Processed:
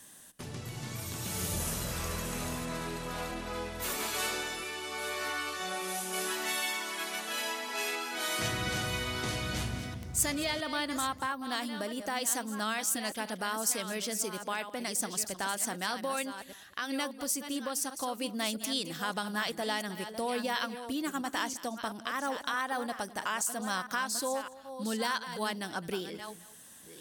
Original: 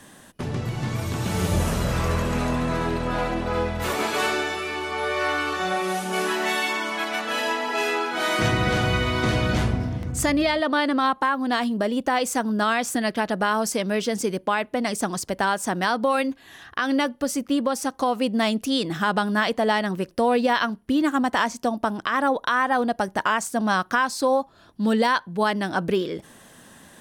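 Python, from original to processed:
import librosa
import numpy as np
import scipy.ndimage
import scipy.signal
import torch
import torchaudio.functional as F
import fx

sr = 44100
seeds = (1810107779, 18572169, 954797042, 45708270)

y = fx.reverse_delay(x, sr, ms=663, wet_db=-10.0)
y = scipy.signal.lfilter([1.0, -0.8], [1.0], y)
y = y + 10.0 ** (-18.0 / 20.0) * np.pad(y, (int(212 * sr / 1000.0), 0))[:len(y)]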